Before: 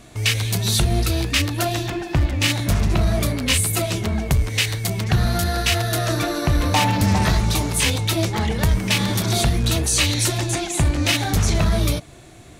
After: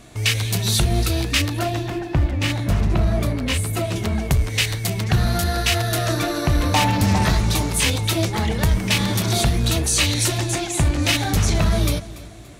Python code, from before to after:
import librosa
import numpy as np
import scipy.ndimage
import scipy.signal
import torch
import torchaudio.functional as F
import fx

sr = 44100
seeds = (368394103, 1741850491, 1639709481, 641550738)

y = fx.high_shelf(x, sr, hz=2700.0, db=-9.5, at=(1.59, 3.96))
y = fx.echo_feedback(y, sr, ms=287, feedback_pct=39, wet_db=-18.0)